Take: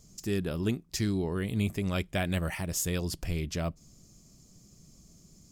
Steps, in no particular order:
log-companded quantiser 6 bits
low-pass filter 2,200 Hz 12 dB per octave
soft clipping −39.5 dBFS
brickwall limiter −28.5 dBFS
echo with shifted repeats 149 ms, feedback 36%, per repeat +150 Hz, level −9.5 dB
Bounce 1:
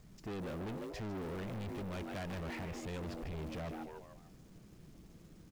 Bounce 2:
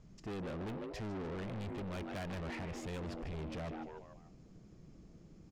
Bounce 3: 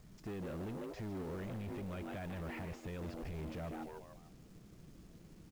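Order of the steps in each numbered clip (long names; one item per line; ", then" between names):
low-pass filter, then log-companded quantiser, then echo with shifted repeats, then soft clipping, then brickwall limiter
echo with shifted repeats, then log-companded quantiser, then low-pass filter, then soft clipping, then brickwall limiter
echo with shifted repeats, then brickwall limiter, then soft clipping, then low-pass filter, then log-companded quantiser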